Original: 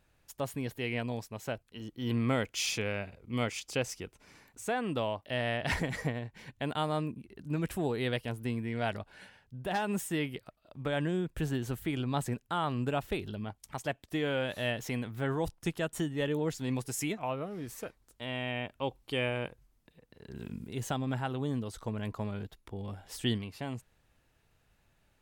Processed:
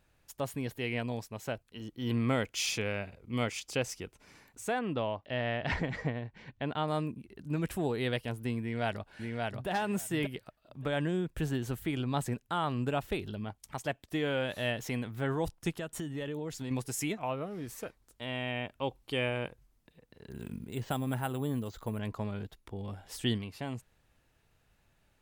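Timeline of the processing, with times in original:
0:04.79–0:06.88: high-frequency loss of the air 150 metres
0:08.61–0:09.68: delay throw 580 ms, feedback 10%, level −2.5 dB
0:15.71–0:16.71: downward compressor, threshold −33 dBFS
0:20.30–0:21.99: bad sample-rate conversion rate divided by 4×, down filtered, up hold

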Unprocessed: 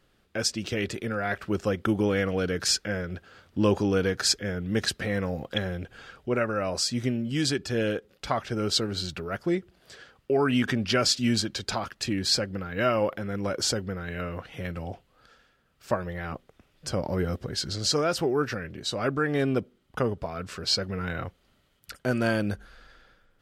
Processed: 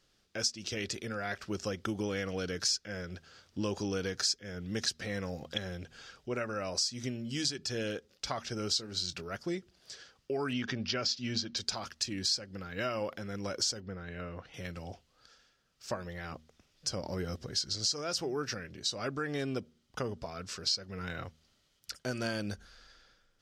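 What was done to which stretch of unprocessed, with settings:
0:08.68–0:09.22: double-tracking delay 23 ms −13.5 dB
0:10.53–0:11.57: moving average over 5 samples
0:13.80–0:14.54: low-pass filter 1,800 Hz 6 dB per octave
whole clip: parametric band 5,600 Hz +14.5 dB 1.2 octaves; hum removal 78.47 Hz, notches 3; downward compressor 4 to 1, threshold −22 dBFS; level −8 dB

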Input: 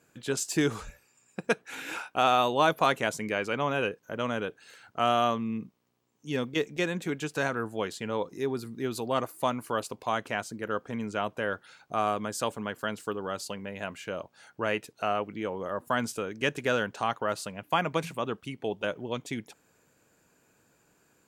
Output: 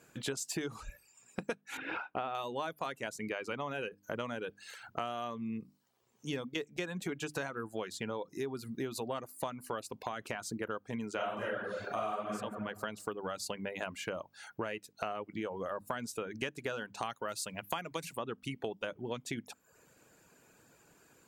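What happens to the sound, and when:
0:01.77–0:02.35: high-frequency loss of the air 380 metres
0:09.90–0:10.47: downward compressor, threshold −29 dBFS
0:11.15–0:12.29: thrown reverb, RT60 1.2 s, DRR −11 dB
0:17.02–0:18.18: high-shelf EQ 3,100 Hz +10 dB
whole clip: mains-hum notches 50/100/150/200/250/300 Hz; reverb reduction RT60 0.53 s; downward compressor 12 to 1, threshold −38 dBFS; level +4 dB

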